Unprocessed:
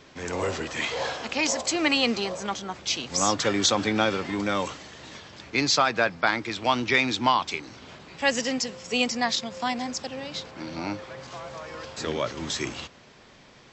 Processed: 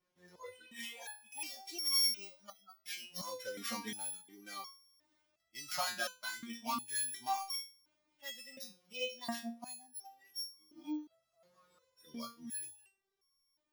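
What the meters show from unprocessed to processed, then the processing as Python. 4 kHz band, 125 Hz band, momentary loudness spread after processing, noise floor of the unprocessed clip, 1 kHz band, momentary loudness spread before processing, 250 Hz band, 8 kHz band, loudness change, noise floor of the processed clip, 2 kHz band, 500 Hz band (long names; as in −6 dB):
−12.0 dB, −26.0 dB, 15 LU, −52 dBFS, −16.5 dB, 16 LU, −18.5 dB, −11.0 dB, −13.0 dB, −83 dBFS, −18.5 dB, −21.0 dB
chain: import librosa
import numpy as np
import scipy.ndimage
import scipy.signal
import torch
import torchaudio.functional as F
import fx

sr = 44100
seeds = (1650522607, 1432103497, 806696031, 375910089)

y = np.r_[np.sort(x[:len(x) // 8 * 8].reshape(-1, 8), axis=1).ravel(), x[len(x) // 8 * 8:]]
y = fx.noise_reduce_blind(y, sr, reduce_db=19)
y = fx.resonator_held(y, sr, hz=2.8, low_hz=180.0, high_hz=1100.0)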